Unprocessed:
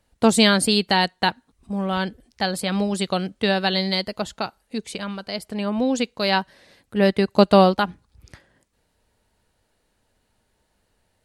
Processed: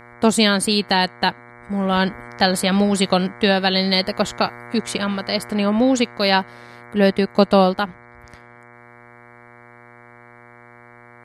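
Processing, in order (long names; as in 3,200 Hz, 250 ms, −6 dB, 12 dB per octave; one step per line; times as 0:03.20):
hum with harmonics 120 Hz, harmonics 19, −45 dBFS −1 dB per octave
speech leveller within 4 dB 0.5 s
level +3.5 dB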